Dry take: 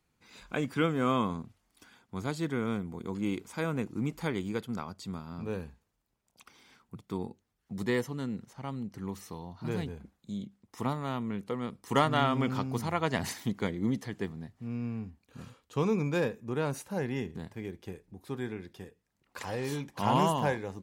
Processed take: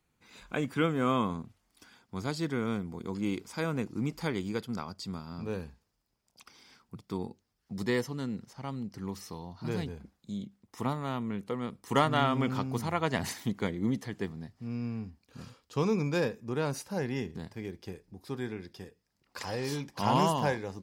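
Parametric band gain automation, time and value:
parametric band 5,000 Hz 0.36 octaves
0:01.23 −2.5 dB
0:02.16 +9 dB
0:09.91 +9 dB
0:10.81 +0.5 dB
0:14.05 +0.5 dB
0:14.51 +10 dB

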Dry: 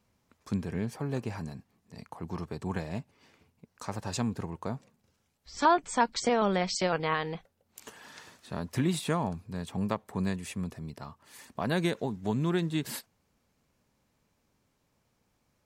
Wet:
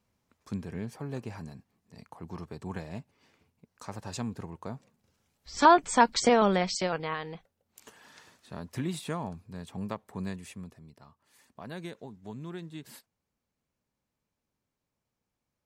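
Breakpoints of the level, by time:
0:04.75 −4 dB
0:05.62 +4.5 dB
0:06.33 +4.5 dB
0:07.15 −5 dB
0:10.41 −5 dB
0:10.85 −12 dB

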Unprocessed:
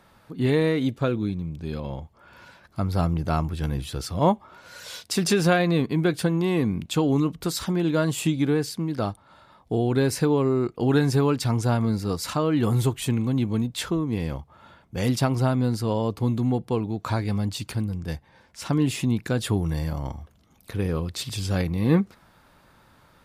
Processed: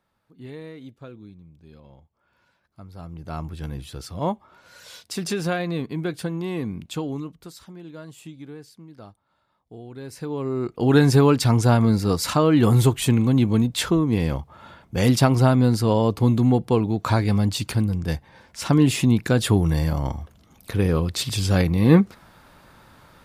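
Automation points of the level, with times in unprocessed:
0:02.97 −17 dB
0:03.46 −5 dB
0:06.94 −5 dB
0:07.65 −17 dB
0:09.96 −17 dB
0:10.38 −6.5 dB
0:11.01 +5.5 dB

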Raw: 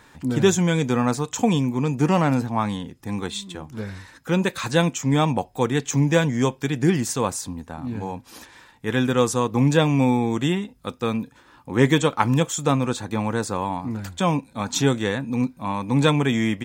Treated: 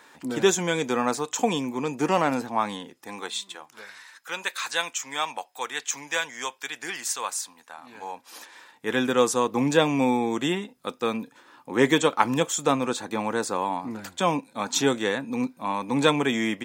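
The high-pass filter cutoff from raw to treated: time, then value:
0:02.74 340 Hz
0:03.92 1,100 Hz
0:07.67 1,100 Hz
0:08.92 280 Hz

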